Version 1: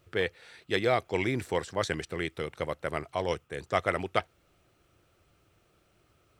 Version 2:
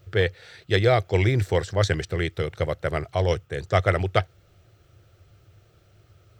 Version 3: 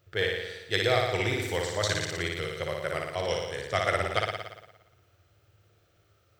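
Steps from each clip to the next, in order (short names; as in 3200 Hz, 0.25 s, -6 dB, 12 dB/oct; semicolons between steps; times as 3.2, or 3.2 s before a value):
fifteen-band EQ 100 Hz +11 dB, 250 Hz -9 dB, 1000 Hz -8 dB, 2500 Hz -5 dB, 10000 Hz -10 dB; gain +8.5 dB
tilt +2.5 dB/oct; flutter echo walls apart 9.9 m, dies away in 1.1 s; mismatched tape noise reduction decoder only; gain -6 dB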